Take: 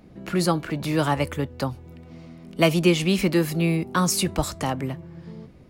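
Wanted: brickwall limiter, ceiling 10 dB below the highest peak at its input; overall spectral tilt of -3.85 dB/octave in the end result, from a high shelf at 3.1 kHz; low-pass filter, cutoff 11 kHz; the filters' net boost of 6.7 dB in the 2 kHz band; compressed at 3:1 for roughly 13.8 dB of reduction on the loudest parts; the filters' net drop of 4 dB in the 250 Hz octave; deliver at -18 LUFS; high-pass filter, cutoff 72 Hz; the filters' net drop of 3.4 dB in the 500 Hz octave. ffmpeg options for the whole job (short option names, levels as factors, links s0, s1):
-af "highpass=72,lowpass=11000,equalizer=f=250:t=o:g=-6,equalizer=f=500:t=o:g=-3,equalizer=f=2000:t=o:g=6.5,highshelf=f=3100:g=5.5,acompressor=threshold=0.0282:ratio=3,volume=7.08,alimiter=limit=0.447:level=0:latency=1"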